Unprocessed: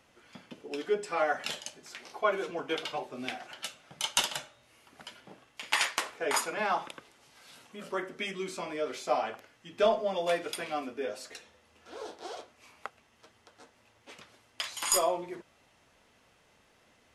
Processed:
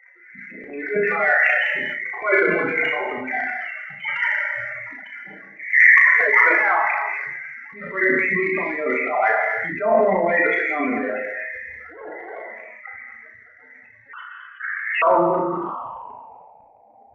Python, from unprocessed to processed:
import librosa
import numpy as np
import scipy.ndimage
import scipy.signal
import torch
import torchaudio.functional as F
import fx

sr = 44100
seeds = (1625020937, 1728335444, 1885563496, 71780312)

p1 = fx.level_steps(x, sr, step_db=16)
p2 = x + (p1 * 10.0 ** (-0.5 / 20.0))
p3 = fx.filter_sweep_lowpass(p2, sr, from_hz=2000.0, to_hz=790.0, start_s=13.91, end_s=16.67, q=7.6)
p4 = fx.spec_topn(p3, sr, count=16)
p5 = fx.transient(p4, sr, attack_db=-8, sustain_db=12)
p6 = p5 + fx.room_early_taps(p5, sr, ms=(35, 66), db=(-5.5, -10.0), dry=0)
p7 = fx.rev_gated(p6, sr, seeds[0], gate_ms=290, shape='flat', drr_db=6.0)
p8 = fx.freq_invert(p7, sr, carrier_hz=3200, at=(14.13, 15.02))
p9 = fx.sustainer(p8, sr, db_per_s=24.0)
y = p9 * 10.0 ** (2.0 / 20.0)